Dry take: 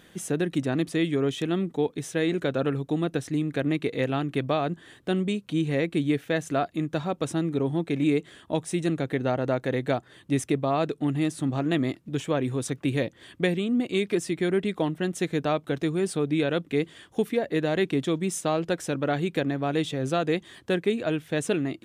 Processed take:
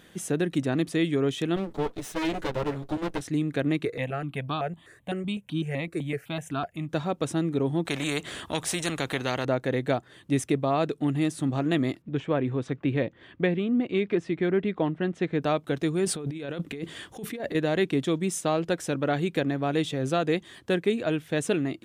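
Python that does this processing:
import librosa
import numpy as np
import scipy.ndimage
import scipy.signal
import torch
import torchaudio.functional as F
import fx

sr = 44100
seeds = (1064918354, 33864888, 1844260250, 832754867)

y = fx.lower_of_two(x, sr, delay_ms=9.5, at=(1.56, 3.21))
y = fx.phaser_held(y, sr, hz=7.9, low_hz=850.0, high_hz=2000.0, at=(3.85, 6.89))
y = fx.spectral_comp(y, sr, ratio=2.0, at=(7.85, 9.45))
y = fx.lowpass(y, sr, hz=2600.0, slope=12, at=(12.02, 15.42))
y = fx.over_compress(y, sr, threshold_db=-33.0, ratio=-1.0, at=(16.05, 17.55))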